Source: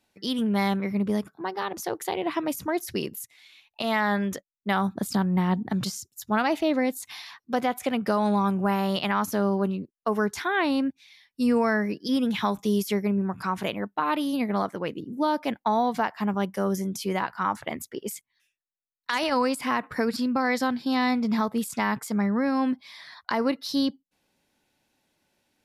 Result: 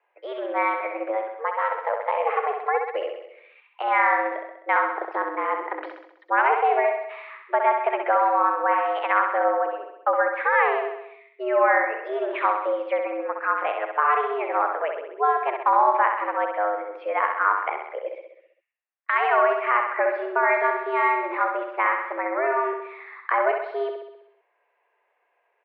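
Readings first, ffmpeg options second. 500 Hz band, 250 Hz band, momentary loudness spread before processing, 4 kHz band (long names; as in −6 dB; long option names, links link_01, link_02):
+4.5 dB, −14.5 dB, 8 LU, below −10 dB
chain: -af "aecho=1:1:65|130|195|260|325|390|455|520:0.531|0.308|0.179|0.104|0.0601|0.0348|0.0202|0.0117,highpass=frequency=360:width_type=q:width=0.5412,highpass=frequency=360:width_type=q:width=1.307,lowpass=frequency=2200:width_type=q:width=0.5176,lowpass=frequency=2200:width_type=q:width=0.7071,lowpass=frequency=2200:width_type=q:width=1.932,afreqshift=130,volume=5dB"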